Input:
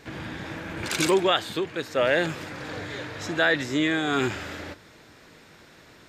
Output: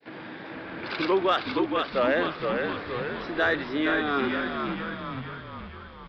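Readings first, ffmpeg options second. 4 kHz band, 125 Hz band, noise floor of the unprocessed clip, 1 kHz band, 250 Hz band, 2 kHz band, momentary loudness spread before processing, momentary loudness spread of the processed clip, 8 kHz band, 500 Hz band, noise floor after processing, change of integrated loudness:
-4.5 dB, -4.0 dB, -52 dBFS, +2.0 dB, -0.5 dB, -1.5 dB, 14 LU, 15 LU, under -25 dB, -0.5 dB, -43 dBFS, -1.0 dB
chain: -filter_complex "[0:a]adynamicequalizer=threshold=0.00631:dfrequency=1200:dqfactor=4.4:tfrequency=1200:tqfactor=4.4:attack=5:release=100:ratio=0.375:range=3.5:mode=boostabove:tftype=bell,highpass=250,aresample=11025,aresample=44100,agate=range=-33dB:threshold=-50dB:ratio=3:detection=peak,highshelf=f=2.6k:g=-7.5,asplit=2[a][b];[b]asplit=8[c][d][e][f][g][h][i][j];[c]adelay=467,afreqshift=-59,volume=-4.5dB[k];[d]adelay=934,afreqshift=-118,volume=-9.4dB[l];[e]adelay=1401,afreqshift=-177,volume=-14.3dB[m];[f]adelay=1868,afreqshift=-236,volume=-19.1dB[n];[g]adelay=2335,afreqshift=-295,volume=-24dB[o];[h]adelay=2802,afreqshift=-354,volume=-28.9dB[p];[i]adelay=3269,afreqshift=-413,volume=-33.8dB[q];[j]adelay=3736,afreqshift=-472,volume=-38.7dB[r];[k][l][m][n][o][p][q][r]amix=inputs=8:normalize=0[s];[a][s]amix=inputs=2:normalize=0,acontrast=62,volume=-7.5dB"

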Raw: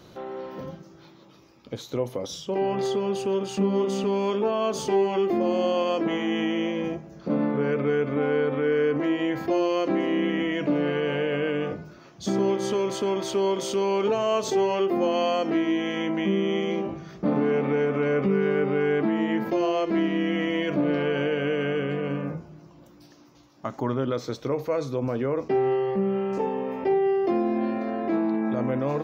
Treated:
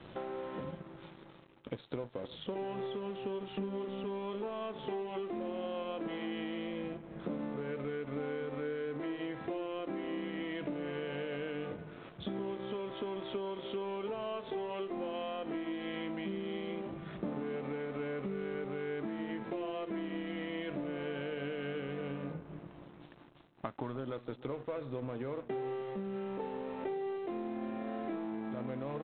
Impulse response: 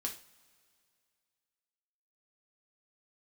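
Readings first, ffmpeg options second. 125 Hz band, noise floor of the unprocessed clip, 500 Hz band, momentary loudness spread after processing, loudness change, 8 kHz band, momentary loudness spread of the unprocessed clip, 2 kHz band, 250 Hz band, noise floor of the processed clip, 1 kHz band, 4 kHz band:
-13.0 dB, -51 dBFS, -14.0 dB, 5 LU, -14.0 dB, under -35 dB, 7 LU, -12.5 dB, -13.5 dB, -55 dBFS, -13.0 dB, -12.5 dB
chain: -filter_complex "[0:a]acompressor=threshold=-39dB:ratio=6,aresample=8000,aeval=exprs='sgn(val(0))*max(abs(val(0))-0.00188,0)':c=same,aresample=44100,asplit=2[a][b];[b]adelay=309,lowpass=f=1.3k:p=1,volume=-16dB,asplit=2[c][d];[d]adelay=309,lowpass=f=1.3k:p=1,volume=0.46,asplit=2[e][f];[f]adelay=309,lowpass=f=1.3k:p=1,volume=0.46,asplit=2[g][h];[h]adelay=309,lowpass=f=1.3k:p=1,volume=0.46[i];[a][c][e][g][i]amix=inputs=5:normalize=0,volume=3dB"

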